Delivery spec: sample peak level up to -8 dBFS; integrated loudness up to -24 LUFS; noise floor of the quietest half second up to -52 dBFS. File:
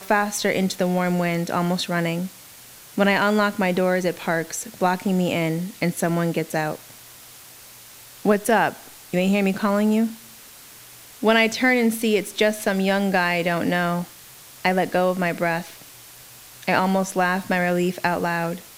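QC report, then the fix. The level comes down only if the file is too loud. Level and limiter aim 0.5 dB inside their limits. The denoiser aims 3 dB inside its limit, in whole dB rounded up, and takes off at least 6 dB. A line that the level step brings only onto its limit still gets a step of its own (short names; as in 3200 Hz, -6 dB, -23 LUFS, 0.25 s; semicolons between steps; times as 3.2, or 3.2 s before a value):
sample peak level -5.5 dBFS: fail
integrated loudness -22.0 LUFS: fail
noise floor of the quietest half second -45 dBFS: fail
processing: denoiser 8 dB, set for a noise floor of -45 dBFS; gain -2.5 dB; limiter -8.5 dBFS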